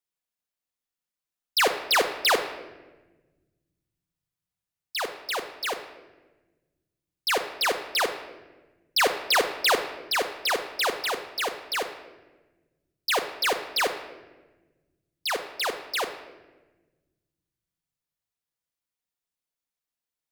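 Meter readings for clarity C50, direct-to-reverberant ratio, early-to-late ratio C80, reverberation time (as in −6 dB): 10.0 dB, 6.5 dB, 12.0 dB, 1.2 s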